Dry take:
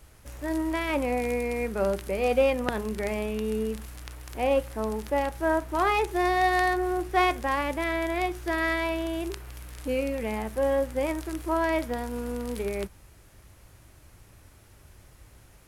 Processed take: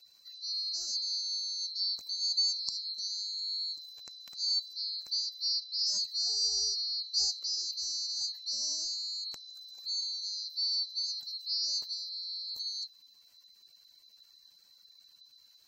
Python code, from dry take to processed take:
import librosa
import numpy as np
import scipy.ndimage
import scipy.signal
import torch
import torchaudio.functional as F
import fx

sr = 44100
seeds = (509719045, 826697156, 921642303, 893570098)

y = fx.band_swap(x, sr, width_hz=4000)
y = fx.spec_gate(y, sr, threshold_db=-30, keep='strong')
y = y * 10.0 ** (-7.5 / 20.0)